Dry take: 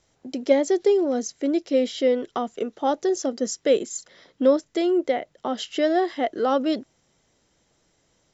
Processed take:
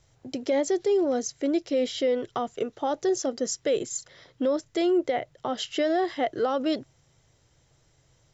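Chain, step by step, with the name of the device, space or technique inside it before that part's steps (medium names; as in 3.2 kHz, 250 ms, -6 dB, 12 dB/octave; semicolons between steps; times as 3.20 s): car stereo with a boomy subwoofer (resonant low shelf 160 Hz +6.5 dB, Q 3; peak limiter -17 dBFS, peak gain reduction 9 dB)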